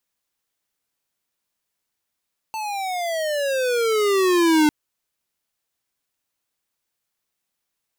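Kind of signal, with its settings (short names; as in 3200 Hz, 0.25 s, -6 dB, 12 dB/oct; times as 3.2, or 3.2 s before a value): gliding synth tone square, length 2.15 s, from 891 Hz, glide -19 st, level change +13 dB, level -15 dB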